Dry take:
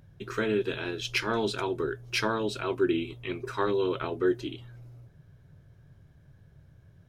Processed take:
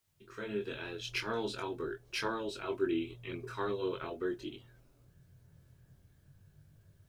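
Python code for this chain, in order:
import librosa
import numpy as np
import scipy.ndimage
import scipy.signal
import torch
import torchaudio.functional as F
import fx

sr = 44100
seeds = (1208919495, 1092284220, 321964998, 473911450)

y = fx.fade_in_head(x, sr, length_s=0.75)
y = fx.quant_dither(y, sr, seeds[0], bits=12, dither='triangular')
y = fx.chorus_voices(y, sr, voices=2, hz=0.44, base_ms=22, depth_ms=2.2, mix_pct=40)
y = F.gain(torch.from_numpy(y), -4.5).numpy()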